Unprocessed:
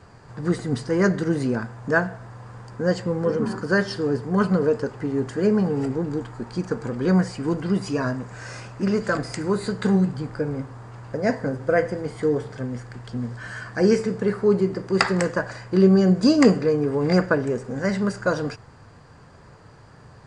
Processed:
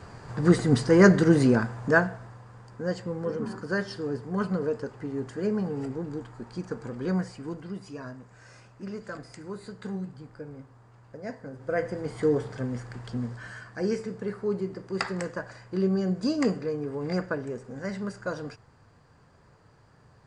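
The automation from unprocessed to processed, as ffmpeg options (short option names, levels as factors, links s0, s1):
-af "volume=6.68,afade=t=out:st=1.46:d=0.99:silence=0.266073,afade=t=out:st=7.05:d=0.71:silence=0.446684,afade=t=in:st=11.5:d=0.73:silence=0.223872,afade=t=out:st=13.11:d=0.56:silence=0.398107"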